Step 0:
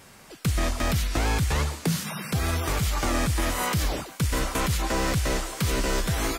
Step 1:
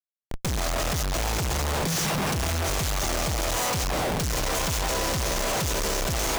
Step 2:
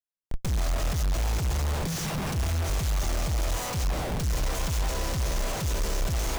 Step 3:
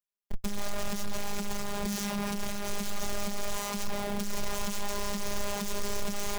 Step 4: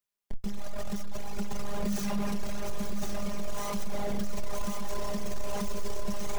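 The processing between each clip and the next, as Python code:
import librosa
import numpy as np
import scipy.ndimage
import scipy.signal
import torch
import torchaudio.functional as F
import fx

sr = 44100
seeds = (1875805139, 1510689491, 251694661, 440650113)

y1 = fx.graphic_eq_15(x, sr, hz=(250, 630, 1600, 6300), db=(-9, 4, -8, 11))
y1 = fx.echo_banded(y1, sr, ms=123, feedback_pct=49, hz=800.0, wet_db=-3.5)
y1 = fx.schmitt(y1, sr, flips_db=-33.0)
y1 = y1 * 10.0 ** (-1.0 / 20.0)
y2 = fx.low_shelf(y1, sr, hz=130.0, db=12.0)
y2 = y2 * 10.0 ** (-7.0 / 20.0)
y3 = fx.robotise(y2, sr, hz=203.0)
y4 = fx.tracing_dist(y3, sr, depth_ms=0.13)
y4 = 10.0 ** (-26.5 / 20.0) * np.tanh(y4 / 10.0 ** (-26.5 / 20.0))
y4 = y4 + 10.0 ** (-6.0 / 20.0) * np.pad(y4, (int(1066 * sr / 1000.0), 0))[:len(y4)]
y4 = y4 * 10.0 ** (4.0 / 20.0)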